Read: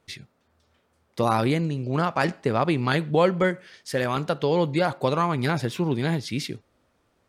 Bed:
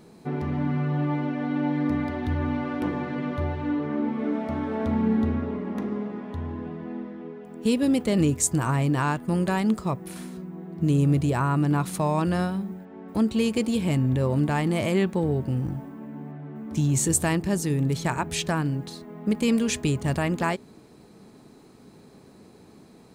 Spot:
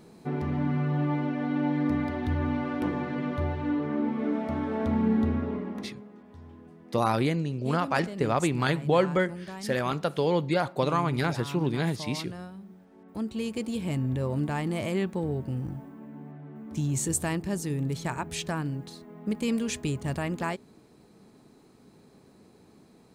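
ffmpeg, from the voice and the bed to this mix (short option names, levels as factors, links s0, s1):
-filter_complex "[0:a]adelay=5750,volume=0.708[s0];[1:a]volume=2.66,afade=t=out:st=5.57:d=0.38:silence=0.199526,afade=t=in:st=12.58:d=1.47:silence=0.316228[s1];[s0][s1]amix=inputs=2:normalize=0"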